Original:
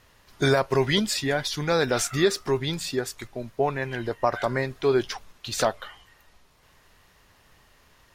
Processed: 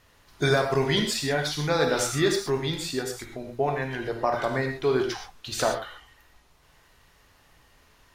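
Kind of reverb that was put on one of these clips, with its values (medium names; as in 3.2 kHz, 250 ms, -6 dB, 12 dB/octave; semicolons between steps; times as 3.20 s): gated-style reverb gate 150 ms flat, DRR 2.5 dB; trim -2.5 dB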